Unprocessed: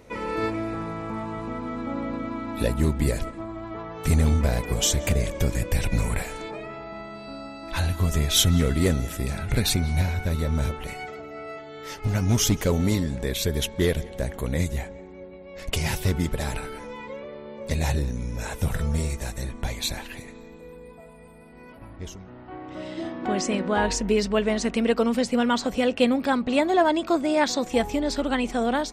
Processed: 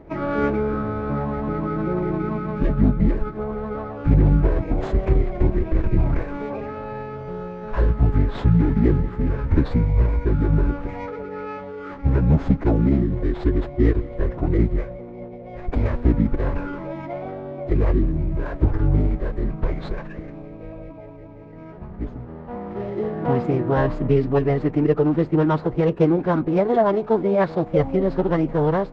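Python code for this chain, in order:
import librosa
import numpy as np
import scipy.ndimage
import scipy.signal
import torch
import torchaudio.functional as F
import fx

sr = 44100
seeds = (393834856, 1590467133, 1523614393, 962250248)

p1 = scipy.ndimage.median_filter(x, 15, mode='constant')
p2 = fx.rider(p1, sr, range_db=4, speed_s=0.5)
p3 = p1 + (p2 * librosa.db_to_amplitude(2.0))
p4 = fx.pitch_keep_formants(p3, sr, semitones=-7.5)
y = fx.spacing_loss(p4, sr, db_at_10k=38)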